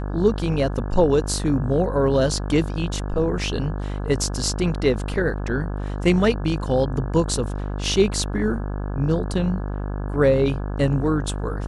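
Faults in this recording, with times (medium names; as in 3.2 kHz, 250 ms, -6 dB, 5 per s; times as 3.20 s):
buzz 50 Hz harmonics 34 -27 dBFS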